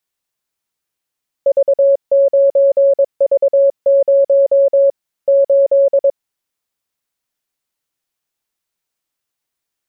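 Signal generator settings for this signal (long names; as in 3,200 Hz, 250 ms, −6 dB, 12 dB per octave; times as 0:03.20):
Morse code "V9V0 8" 22 words per minute 554 Hz −7 dBFS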